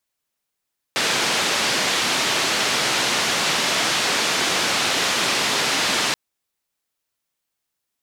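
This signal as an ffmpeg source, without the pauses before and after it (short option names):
-f lavfi -i "anoisesrc=c=white:d=5.18:r=44100:seed=1,highpass=f=160,lowpass=f=4800,volume=-9.7dB"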